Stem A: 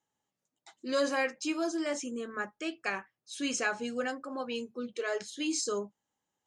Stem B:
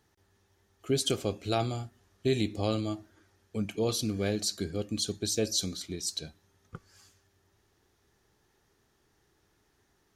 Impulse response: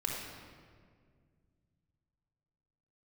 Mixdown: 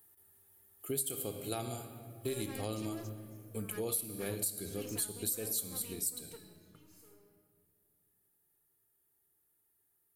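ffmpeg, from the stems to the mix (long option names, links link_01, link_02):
-filter_complex "[0:a]aeval=exprs='(tanh(70.8*val(0)+0.7)-tanh(0.7))/70.8':channel_layout=same,adelay=1350,volume=-9.5dB,asplit=2[link_01][link_02];[link_02]volume=-21dB[link_03];[1:a]aexciter=amount=14.8:drive=7.8:freq=8800,volume=-9dB,afade=type=out:start_time=6.01:duration=0.72:silence=0.251189,asplit=3[link_04][link_05][link_06];[link_05]volume=-7.5dB[link_07];[link_06]apad=whole_len=344497[link_08];[link_01][link_08]sidechaingate=range=-33dB:threshold=-57dB:ratio=16:detection=peak[link_09];[2:a]atrim=start_sample=2205[link_10];[link_03][link_07]amix=inputs=2:normalize=0[link_11];[link_11][link_10]afir=irnorm=-1:irlink=0[link_12];[link_09][link_04][link_12]amix=inputs=3:normalize=0,lowshelf=frequency=72:gain=-8.5,acompressor=threshold=-33dB:ratio=5"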